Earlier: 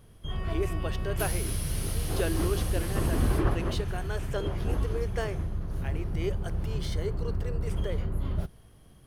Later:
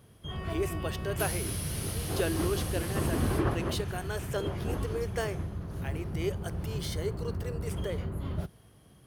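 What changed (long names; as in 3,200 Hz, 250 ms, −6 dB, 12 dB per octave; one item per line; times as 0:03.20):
speech: add high-shelf EQ 8,400 Hz +11 dB
background: add high-pass filter 80 Hz 12 dB per octave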